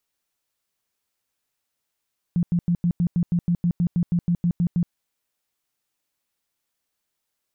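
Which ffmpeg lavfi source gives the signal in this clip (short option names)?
-f lavfi -i "aevalsrc='0.141*sin(2*PI*173*mod(t,0.16))*lt(mod(t,0.16),12/173)':d=2.56:s=44100"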